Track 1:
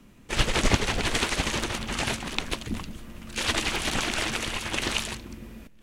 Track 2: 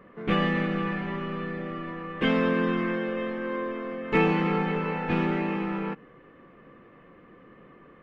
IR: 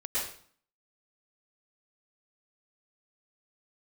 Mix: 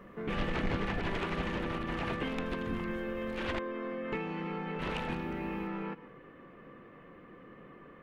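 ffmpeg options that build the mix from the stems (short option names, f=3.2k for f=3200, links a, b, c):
-filter_complex "[0:a]acrossover=split=3400[a][b];[b]acompressor=threshold=-46dB:ratio=4:attack=1:release=60[c];[a][c]amix=inputs=2:normalize=0,equalizer=f=7.8k:w=0.58:g=-13,asoftclip=type=tanh:threshold=-22dB,volume=-5.5dB,asplit=3[d][e][f];[d]atrim=end=3.59,asetpts=PTS-STARTPTS,afade=t=out:st=3.586:d=0.004:c=hsin[g];[e]atrim=start=3.59:end=4.79,asetpts=PTS-STARTPTS,volume=0[h];[f]atrim=start=4.79,asetpts=PTS-STARTPTS,afade=t=in:d=0.004:c=hsin[i];[g][h][i]concat=n=3:v=0:a=1[j];[1:a]acompressor=threshold=-33dB:ratio=12,volume=-1dB,asplit=2[k][l];[l]volume=-22dB[m];[2:a]atrim=start_sample=2205[n];[m][n]afir=irnorm=-1:irlink=0[o];[j][k][o]amix=inputs=3:normalize=0"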